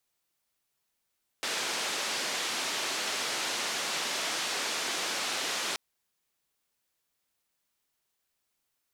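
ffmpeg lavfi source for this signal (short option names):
-f lavfi -i "anoisesrc=c=white:d=4.33:r=44100:seed=1,highpass=f=280,lowpass=f=5600,volume=-21.8dB"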